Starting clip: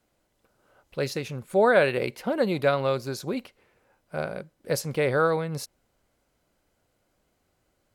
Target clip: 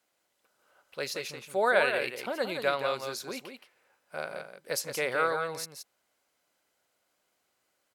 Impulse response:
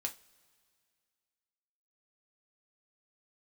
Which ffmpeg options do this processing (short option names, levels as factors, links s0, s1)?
-af "highpass=f=1100:p=1,aecho=1:1:172:0.447"